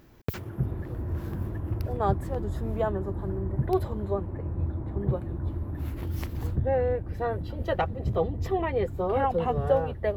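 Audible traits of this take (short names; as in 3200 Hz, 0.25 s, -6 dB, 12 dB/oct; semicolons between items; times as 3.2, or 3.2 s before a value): noise floor -38 dBFS; spectral tilt -6.0 dB/oct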